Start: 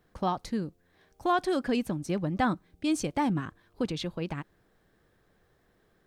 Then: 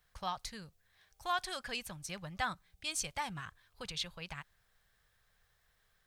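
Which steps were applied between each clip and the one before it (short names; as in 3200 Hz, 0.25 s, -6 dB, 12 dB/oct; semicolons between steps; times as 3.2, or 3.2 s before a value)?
passive tone stack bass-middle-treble 10-0-10; gain +2.5 dB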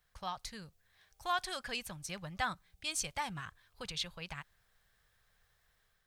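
AGC gain up to 3 dB; gain -2.5 dB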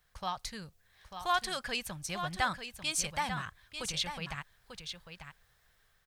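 echo 0.894 s -8.5 dB; gain +4 dB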